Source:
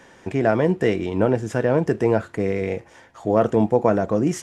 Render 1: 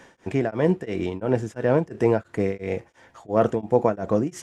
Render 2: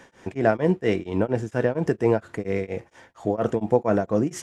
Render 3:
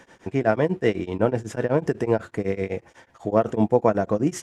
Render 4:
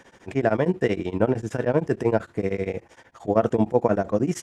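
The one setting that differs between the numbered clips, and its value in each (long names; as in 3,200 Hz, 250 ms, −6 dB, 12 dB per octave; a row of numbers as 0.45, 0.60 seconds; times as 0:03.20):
tremolo along a rectified sine, nulls at: 2.9, 4.3, 8, 13 Hertz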